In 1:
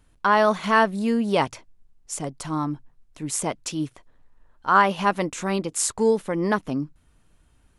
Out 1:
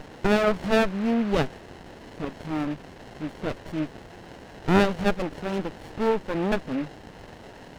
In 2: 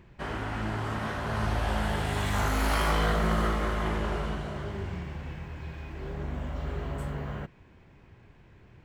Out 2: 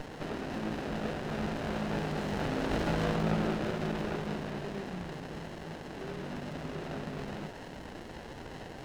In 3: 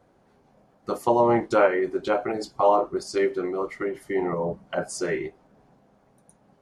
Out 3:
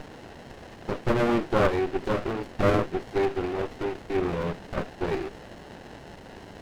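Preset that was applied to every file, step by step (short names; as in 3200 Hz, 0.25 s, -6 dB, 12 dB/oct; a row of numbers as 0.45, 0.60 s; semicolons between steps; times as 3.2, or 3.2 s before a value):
FFT band-pass 150–4500 Hz; band noise 710–2700 Hz -40 dBFS; running maximum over 33 samples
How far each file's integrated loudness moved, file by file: -3.0, -4.5, -3.0 LU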